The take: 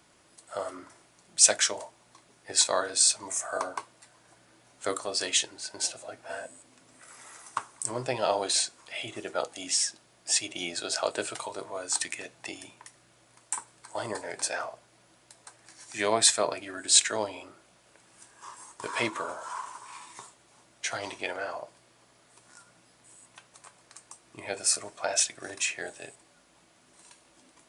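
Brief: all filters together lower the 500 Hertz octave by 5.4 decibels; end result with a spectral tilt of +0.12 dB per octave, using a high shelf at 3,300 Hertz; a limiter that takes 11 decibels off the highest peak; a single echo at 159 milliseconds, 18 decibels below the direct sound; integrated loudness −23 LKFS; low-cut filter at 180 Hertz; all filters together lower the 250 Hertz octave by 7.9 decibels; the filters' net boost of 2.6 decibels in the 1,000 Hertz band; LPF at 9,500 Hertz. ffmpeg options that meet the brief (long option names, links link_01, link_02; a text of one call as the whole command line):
ffmpeg -i in.wav -af "highpass=180,lowpass=9500,equalizer=frequency=250:width_type=o:gain=-6.5,equalizer=frequency=500:width_type=o:gain=-8.5,equalizer=frequency=1000:width_type=o:gain=7,highshelf=frequency=3300:gain=-8.5,alimiter=limit=-20.5dB:level=0:latency=1,aecho=1:1:159:0.126,volume=13dB" out.wav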